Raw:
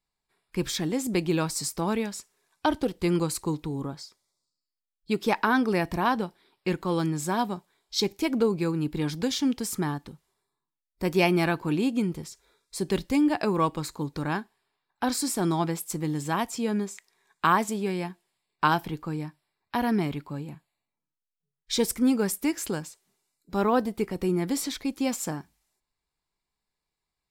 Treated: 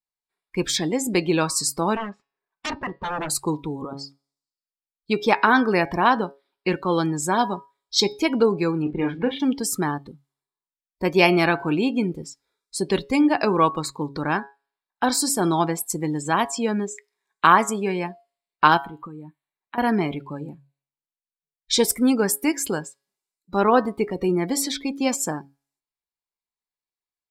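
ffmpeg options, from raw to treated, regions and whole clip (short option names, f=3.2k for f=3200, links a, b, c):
-filter_complex "[0:a]asettb=1/sr,asplit=3[a][b][c];[a]atrim=end=1.964[d];[b]atrim=start=1.96:end=3.3,asetpts=PTS-STARTPTS,afade=t=in:d=0.004:c=qsin,afade=t=out:st=1.336:d=0.004:c=qsin,lowpass=1.9k,aeval=exprs='0.0376*(abs(mod(val(0)/0.0376+3,4)-2)-1)':c=same[e];[c]atrim=start=3.296[f];[d][e]acrossfade=d=0.004:c1=hsin:c2=qsin[g];[g][f]acrossfade=d=0.004:c1=qsin:c2=hsin,asettb=1/sr,asplit=3[h][i][j];[h]atrim=end=8.824[k];[i]atrim=start=8.82:end=9.4,asetpts=PTS-STARTPTS,afade=t=in:d=0.004:c=qsin,afade=t=out:st=0.576:d=0.004:c=qsin,lowpass=f=2.9k:w=0.5412,lowpass=f=2.9k:w=1.3066,asplit=2[l][m];[m]adelay=36,volume=-6.5dB[n];[l][n]amix=inputs=2:normalize=0,atrim=end_sample=25578,aeval=exprs='sgn(val(0))*max(abs(val(0))-0.00251,0)':c=same[o];[j]atrim=start=9.396[p];[k][o]acrossfade=d=0.004:c1=hsin:c2=qsin[q];[q][p]acrossfade=d=0.004:c1=qsin:c2=hsin,asettb=1/sr,asplit=3[r][s][t];[r]atrim=end=18.774[u];[s]atrim=start=18.77:end=19.78,asetpts=PTS-STARTPTS,afade=t=in:d=0.004:c=qsin,afade=t=out:st=1.006:d=0.004:c=qsin,acompressor=threshold=-37dB:ratio=8:attack=3.2:release=140:knee=1:detection=peak,asuperstop=centerf=5300:order=4:qfactor=2.1[v];[t]atrim=start=19.776[w];[u][v]acrossfade=d=0.004:c1=hsin:c2=qsin[x];[x][w]acrossfade=d=0.004:c1=qsin:c2=hsin,bandreject=f=138.8:t=h:w=4,bandreject=f=277.6:t=h:w=4,bandreject=f=416.4:t=h:w=4,bandreject=f=555.2:t=h:w=4,bandreject=f=694:t=h:w=4,bandreject=f=832.8:t=h:w=4,bandreject=f=971.6:t=h:w=4,bandreject=f=1.1104k:t=h:w=4,bandreject=f=1.2492k:t=h:w=4,bandreject=f=1.388k:t=h:w=4,bandreject=f=1.5268k:t=h:w=4,bandreject=f=1.6656k:t=h:w=4,bandreject=f=1.8044k:t=h:w=4,bandreject=f=1.9432k:t=h:w=4,bandreject=f=2.082k:t=h:w=4,bandreject=f=2.2208k:t=h:w=4,bandreject=f=2.3596k:t=h:w=4,bandreject=f=2.4984k:t=h:w=4,bandreject=f=2.6372k:t=h:w=4,bandreject=f=2.776k:t=h:w=4,bandreject=f=2.9148k:t=h:w=4,bandreject=f=3.0536k:t=h:w=4,bandreject=f=3.1924k:t=h:w=4,bandreject=f=3.3312k:t=h:w=4,bandreject=f=3.47k:t=h:w=4,bandreject=f=3.6088k:t=h:w=4,bandreject=f=3.7476k:t=h:w=4,bandreject=f=3.8864k:t=h:w=4,bandreject=f=4.0252k:t=h:w=4,bandreject=f=4.164k:t=h:w=4,bandreject=f=4.3028k:t=h:w=4,bandreject=f=4.4416k:t=h:w=4,bandreject=f=4.5804k:t=h:w=4,bandreject=f=4.7192k:t=h:w=4,bandreject=f=4.858k:t=h:w=4,bandreject=f=4.9968k:t=h:w=4,bandreject=f=5.1356k:t=h:w=4,bandreject=f=5.2744k:t=h:w=4,afftdn=nr=19:nf=-42,lowshelf=f=230:g=-10,volume=8dB"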